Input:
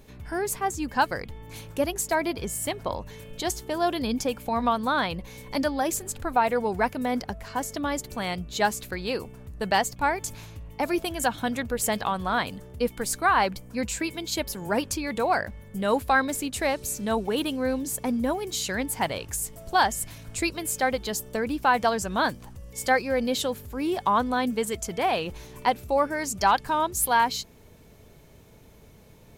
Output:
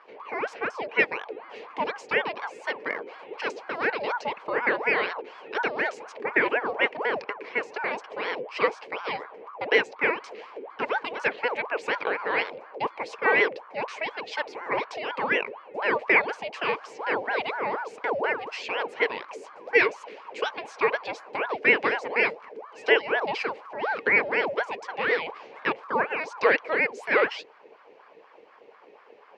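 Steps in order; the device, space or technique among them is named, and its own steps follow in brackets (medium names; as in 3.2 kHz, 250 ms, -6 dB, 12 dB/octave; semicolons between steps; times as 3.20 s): voice changer toy (ring modulator with a swept carrier 770 Hz, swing 60%, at 4.1 Hz; cabinet simulation 440–3800 Hz, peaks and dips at 450 Hz +9 dB, 710 Hz -4 dB, 1.3 kHz -7 dB, 2.3 kHz +6 dB, 3.6 kHz -8 dB); trim +3.5 dB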